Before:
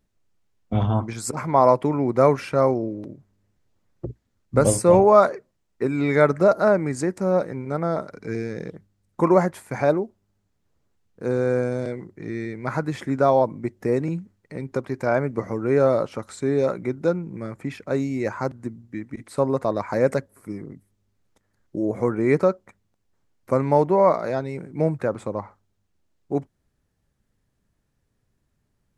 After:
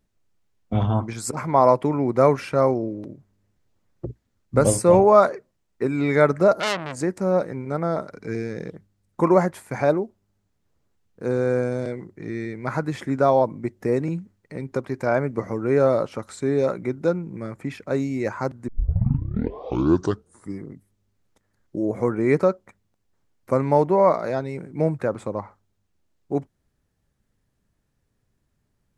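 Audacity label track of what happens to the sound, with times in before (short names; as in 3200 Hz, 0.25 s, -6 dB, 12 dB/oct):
6.600000	7.010000	core saturation saturates under 3900 Hz
18.680000	18.680000	tape start 1.93 s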